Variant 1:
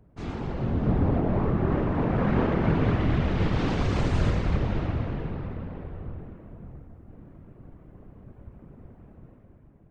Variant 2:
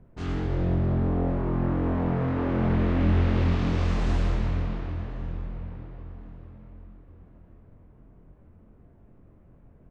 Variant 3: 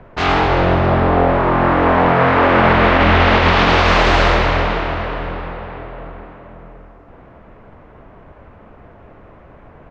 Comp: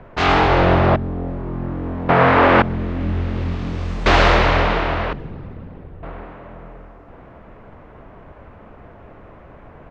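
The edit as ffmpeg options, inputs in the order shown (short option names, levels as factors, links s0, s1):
-filter_complex "[1:a]asplit=2[s0][s1];[2:a]asplit=4[s2][s3][s4][s5];[s2]atrim=end=0.962[s6];[s0]atrim=start=0.958:end=2.092[s7];[s3]atrim=start=2.088:end=2.622[s8];[s1]atrim=start=2.618:end=4.062[s9];[s4]atrim=start=4.058:end=5.132[s10];[0:a]atrim=start=5.128:end=6.032[s11];[s5]atrim=start=6.028[s12];[s6][s7]acrossfade=d=0.004:c1=hsin:c2=hsin[s13];[s13][s8]acrossfade=d=0.004:c1=hsin:c2=hsin[s14];[s14][s9]acrossfade=d=0.004:c1=hsin:c2=hsin[s15];[s15][s10]acrossfade=d=0.004:c1=hsin:c2=hsin[s16];[s16][s11]acrossfade=d=0.004:c1=hsin:c2=hsin[s17];[s17][s12]acrossfade=d=0.004:c1=hsin:c2=hsin"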